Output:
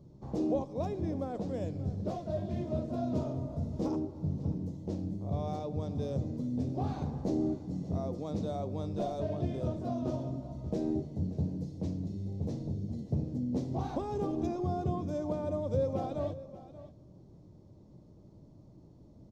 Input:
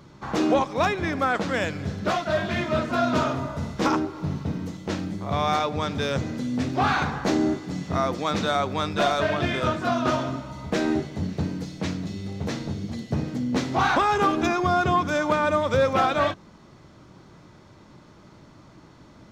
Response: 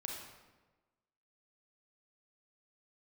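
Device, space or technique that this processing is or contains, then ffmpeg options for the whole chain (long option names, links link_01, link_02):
ducked reverb: -filter_complex "[0:a]asplit=3[link_01][link_02][link_03];[1:a]atrim=start_sample=2205[link_04];[link_02][link_04]afir=irnorm=-1:irlink=0[link_05];[link_03]apad=whole_len=851871[link_06];[link_05][link_06]sidechaincompress=threshold=-27dB:ratio=8:attack=16:release=390,volume=-8dB[link_07];[link_01][link_07]amix=inputs=2:normalize=0,firequalizer=gain_entry='entry(100,0);entry(220,-4);entry(570,-6);entry(1400,-30);entry(4900,-16)':delay=0.05:min_phase=1,aecho=1:1:584:0.158,volume=-4.5dB"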